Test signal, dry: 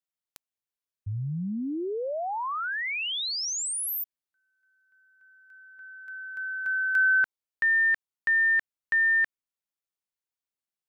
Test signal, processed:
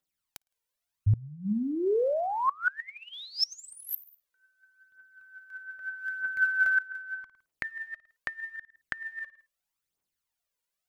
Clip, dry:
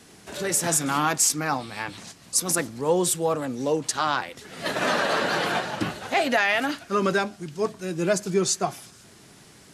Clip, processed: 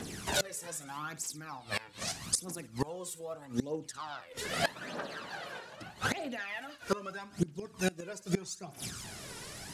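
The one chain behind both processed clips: phaser 0.8 Hz, delay 2.2 ms, feedback 64%; flutter echo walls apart 9.3 m, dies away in 0.22 s; inverted gate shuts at -20 dBFS, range -24 dB; trim +4 dB

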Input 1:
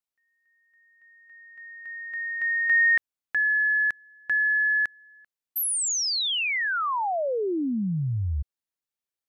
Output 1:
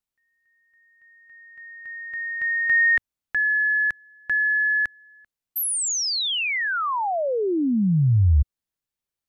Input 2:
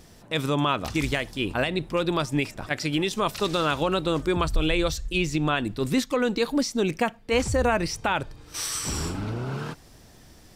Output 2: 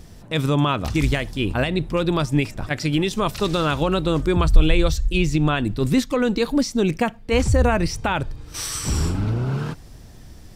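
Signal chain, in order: bass shelf 180 Hz +11 dB; trim +1.5 dB

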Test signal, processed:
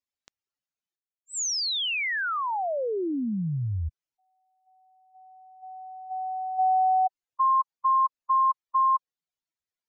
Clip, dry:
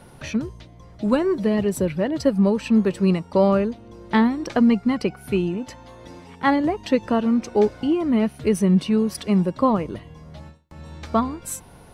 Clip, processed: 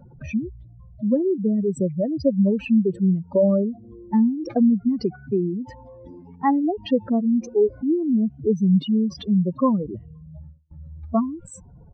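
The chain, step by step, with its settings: spectral contrast enhancement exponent 2.9; resampled via 16 kHz

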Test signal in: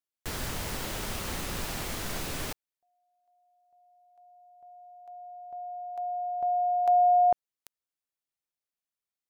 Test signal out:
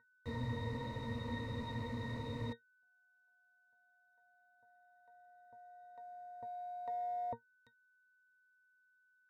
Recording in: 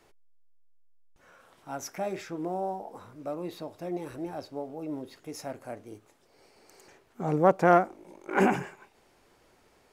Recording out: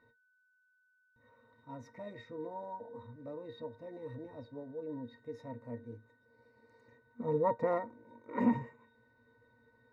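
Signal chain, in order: short-mantissa float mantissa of 4-bit; whistle 1.5 kHz -47 dBFS; pitch-class resonator A#, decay 0.11 s; trim +5.5 dB

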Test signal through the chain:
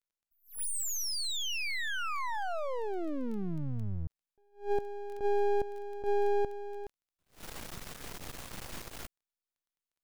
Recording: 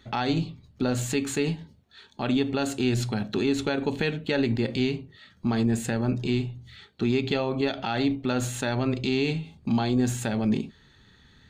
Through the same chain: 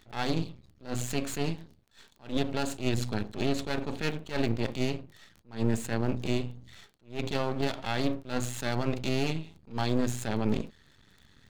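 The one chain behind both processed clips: half-wave rectifier; crackle 11 per s -40 dBFS; attacks held to a fixed rise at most 200 dB/s

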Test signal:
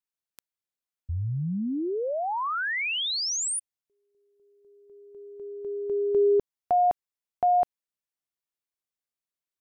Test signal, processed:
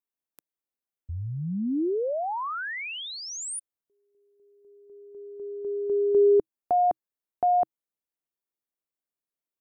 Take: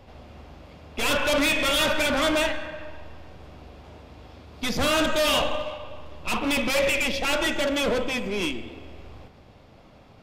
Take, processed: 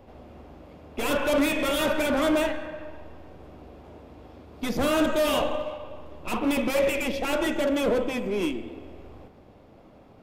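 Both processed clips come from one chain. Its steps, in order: FFT filter 130 Hz 0 dB, 320 Hz +7 dB, 4.8 kHz -6 dB, 15 kHz +3 dB; trim -3.5 dB

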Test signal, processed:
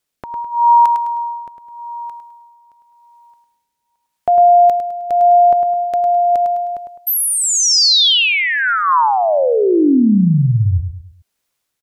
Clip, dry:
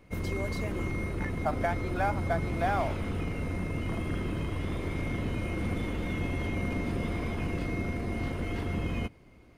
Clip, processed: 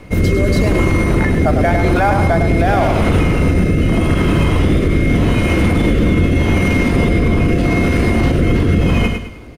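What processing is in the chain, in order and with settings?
feedback delay 104 ms, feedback 37%, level -8 dB; rotary cabinet horn 0.85 Hz; loudness maximiser +27 dB; trim -4 dB

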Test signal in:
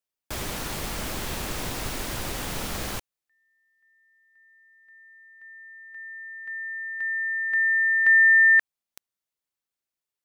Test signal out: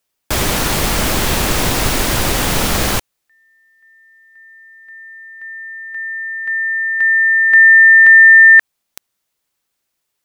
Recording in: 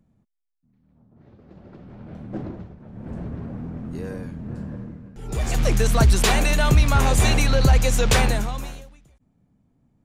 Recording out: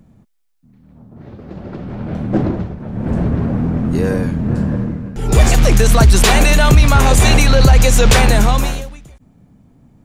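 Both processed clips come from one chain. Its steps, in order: loudness maximiser +16.5 dB; trim -1 dB

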